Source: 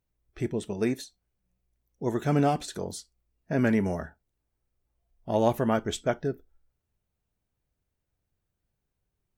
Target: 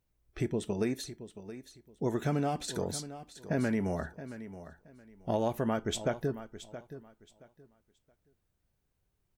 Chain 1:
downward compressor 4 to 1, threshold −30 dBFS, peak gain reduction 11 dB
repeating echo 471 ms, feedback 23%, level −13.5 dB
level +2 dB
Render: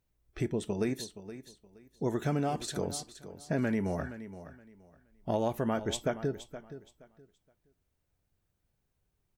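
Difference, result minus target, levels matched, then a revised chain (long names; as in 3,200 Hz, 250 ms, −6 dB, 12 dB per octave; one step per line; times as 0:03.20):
echo 202 ms early
downward compressor 4 to 1, threshold −30 dBFS, peak gain reduction 11 dB
repeating echo 673 ms, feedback 23%, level −13.5 dB
level +2 dB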